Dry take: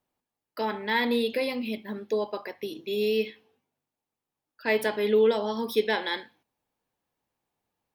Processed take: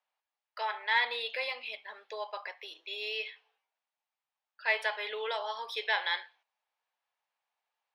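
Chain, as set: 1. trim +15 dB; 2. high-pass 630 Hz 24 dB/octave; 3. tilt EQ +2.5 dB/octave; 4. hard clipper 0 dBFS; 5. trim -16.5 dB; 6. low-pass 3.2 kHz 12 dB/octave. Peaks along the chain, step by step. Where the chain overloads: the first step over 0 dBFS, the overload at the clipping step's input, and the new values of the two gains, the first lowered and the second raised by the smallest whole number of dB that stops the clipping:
+3.5 dBFS, +1.5 dBFS, +3.0 dBFS, 0.0 dBFS, -16.5 dBFS, -16.0 dBFS; step 1, 3.0 dB; step 1 +12 dB, step 5 -13.5 dB

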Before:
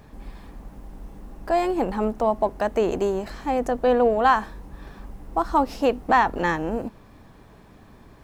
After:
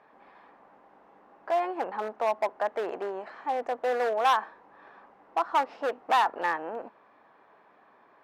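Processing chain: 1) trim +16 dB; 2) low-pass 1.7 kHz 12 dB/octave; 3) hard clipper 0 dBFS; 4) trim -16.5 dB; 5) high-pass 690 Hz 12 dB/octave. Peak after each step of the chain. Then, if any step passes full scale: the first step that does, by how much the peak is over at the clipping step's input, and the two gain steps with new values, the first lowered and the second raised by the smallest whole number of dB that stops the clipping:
+8.5 dBFS, +7.5 dBFS, 0.0 dBFS, -16.5 dBFS, -12.0 dBFS; step 1, 7.5 dB; step 1 +8 dB, step 4 -8.5 dB

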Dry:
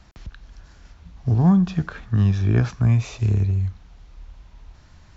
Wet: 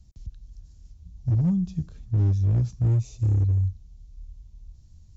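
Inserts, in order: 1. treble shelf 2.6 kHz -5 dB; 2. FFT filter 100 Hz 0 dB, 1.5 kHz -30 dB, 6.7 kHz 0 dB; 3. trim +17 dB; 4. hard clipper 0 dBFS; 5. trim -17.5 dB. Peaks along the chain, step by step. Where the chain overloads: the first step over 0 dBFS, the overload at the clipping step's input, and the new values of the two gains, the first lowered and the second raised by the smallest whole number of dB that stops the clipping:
-6.5 dBFS, -12.0 dBFS, +5.0 dBFS, 0.0 dBFS, -17.5 dBFS; step 3, 5.0 dB; step 3 +12 dB, step 5 -12.5 dB

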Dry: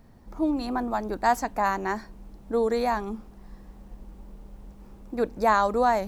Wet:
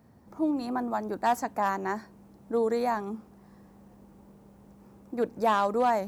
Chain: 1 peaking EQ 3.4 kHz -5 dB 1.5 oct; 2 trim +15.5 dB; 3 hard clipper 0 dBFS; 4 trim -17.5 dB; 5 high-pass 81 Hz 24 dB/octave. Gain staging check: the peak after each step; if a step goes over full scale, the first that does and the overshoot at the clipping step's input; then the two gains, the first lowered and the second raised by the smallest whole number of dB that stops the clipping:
-9.5 dBFS, +6.0 dBFS, 0.0 dBFS, -17.5 dBFS, -14.5 dBFS; step 2, 6.0 dB; step 2 +9.5 dB, step 4 -11.5 dB

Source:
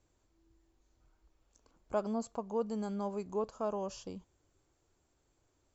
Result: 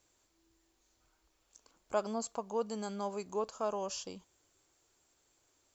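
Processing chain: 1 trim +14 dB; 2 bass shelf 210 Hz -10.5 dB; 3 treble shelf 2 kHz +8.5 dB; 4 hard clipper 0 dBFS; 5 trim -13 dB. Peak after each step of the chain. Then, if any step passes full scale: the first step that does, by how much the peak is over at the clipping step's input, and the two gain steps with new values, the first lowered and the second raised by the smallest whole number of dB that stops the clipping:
-6.5 dBFS, -7.0 dBFS, -6.0 dBFS, -6.0 dBFS, -19.0 dBFS; nothing clips

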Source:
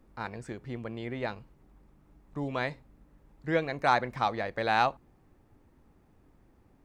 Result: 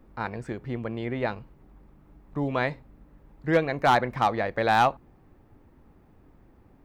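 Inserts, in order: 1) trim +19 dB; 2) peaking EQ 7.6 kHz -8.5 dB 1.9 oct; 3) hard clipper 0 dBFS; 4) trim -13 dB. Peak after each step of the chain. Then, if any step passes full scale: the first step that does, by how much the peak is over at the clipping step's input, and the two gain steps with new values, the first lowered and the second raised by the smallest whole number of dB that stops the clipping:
+8.0 dBFS, +7.0 dBFS, 0.0 dBFS, -13.0 dBFS; step 1, 7.0 dB; step 1 +12 dB, step 4 -6 dB

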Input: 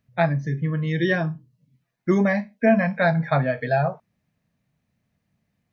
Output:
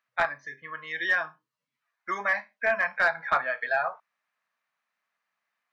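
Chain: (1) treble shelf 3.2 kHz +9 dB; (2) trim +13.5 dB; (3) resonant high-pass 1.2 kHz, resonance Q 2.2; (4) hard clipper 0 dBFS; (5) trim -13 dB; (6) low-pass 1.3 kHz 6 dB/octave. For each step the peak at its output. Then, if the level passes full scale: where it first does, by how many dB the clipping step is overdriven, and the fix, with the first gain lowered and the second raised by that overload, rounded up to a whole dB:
-4.5 dBFS, +9.0 dBFS, +9.0 dBFS, 0.0 dBFS, -13.0 dBFS, -14.0 dBFS; step 2, 9.0 dB; step 2 +4.5 dB, step 5 -4 dB

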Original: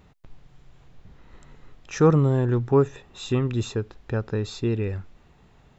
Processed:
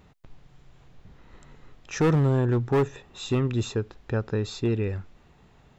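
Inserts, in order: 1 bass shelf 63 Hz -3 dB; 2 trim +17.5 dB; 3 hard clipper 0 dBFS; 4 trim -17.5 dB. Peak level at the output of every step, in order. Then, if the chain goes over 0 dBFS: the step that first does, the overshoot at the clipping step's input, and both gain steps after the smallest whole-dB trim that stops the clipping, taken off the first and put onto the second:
-7.5 dBFS, +10.0 dBFS, 0.0 dBFS, -17.5 dBFS; step 2, 10.0 dB; step 2 +7.5 dB, step 4 -7.5 dB

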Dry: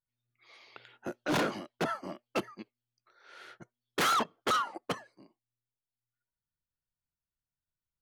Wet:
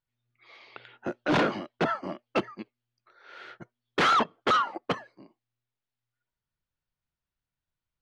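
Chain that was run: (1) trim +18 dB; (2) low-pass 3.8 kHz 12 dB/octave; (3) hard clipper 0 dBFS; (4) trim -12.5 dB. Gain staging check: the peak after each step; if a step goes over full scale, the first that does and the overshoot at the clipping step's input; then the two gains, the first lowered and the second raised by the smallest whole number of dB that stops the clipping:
-5.0 dBFS, -5.5 dBFS, -5.5 dBFS, -18.0 dBFS; nothing clips

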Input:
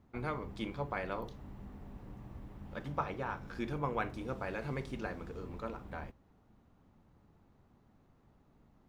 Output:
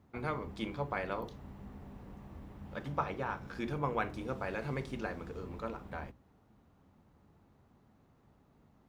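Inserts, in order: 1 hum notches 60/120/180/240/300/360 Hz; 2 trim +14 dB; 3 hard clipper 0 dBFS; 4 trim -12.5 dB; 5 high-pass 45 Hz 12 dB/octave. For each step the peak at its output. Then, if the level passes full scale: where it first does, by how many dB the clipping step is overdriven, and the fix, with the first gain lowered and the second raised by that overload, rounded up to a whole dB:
-20.0 dBFS, -6.0 dBFS, -6.0 dBFS, -18.5 dBFS, -18.5 dBFS; nothing clips

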